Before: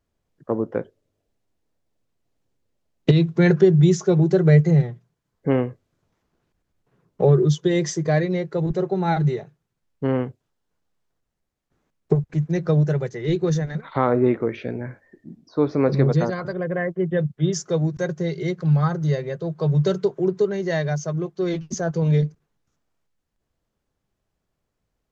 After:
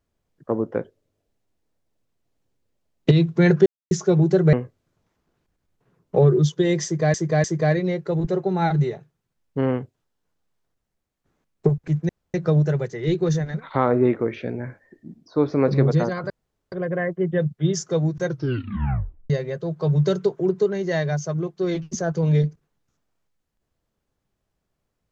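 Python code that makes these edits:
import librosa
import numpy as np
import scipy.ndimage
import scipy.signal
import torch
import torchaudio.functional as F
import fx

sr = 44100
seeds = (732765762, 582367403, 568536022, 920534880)

y = fx.edit(x, sr, fx.silence(start_s=3.66, length_s=0.25),
    fx.cut(start_s=4.53, length_s=1.06),
    fx.repeat(start_s=7.9, length_s=0.3, count=3),
    fx.insert_room_tone(at_s=12.55, length_s=0.25),
    fx.insert_room_tone(at_s=16.51, length_s=0.42),
    fx.tape_stop(start_s=18.04, length_s=1.05), tone=tone)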